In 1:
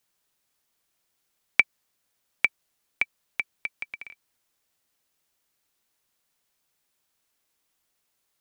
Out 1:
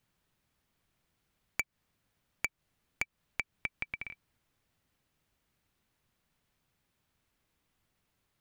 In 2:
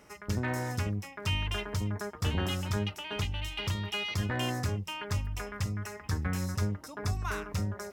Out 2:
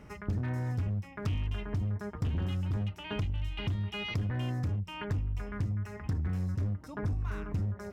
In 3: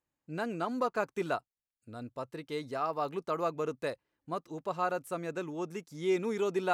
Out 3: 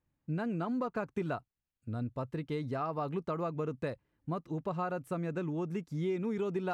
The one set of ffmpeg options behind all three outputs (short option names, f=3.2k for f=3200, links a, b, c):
-af "bass=f=250:g=13,treble=f=4k:g=-9,asoftclip=type=hard:threshold=-17.5dB,acompressor=threshold=-32dB:ratio=5,volume=1dB"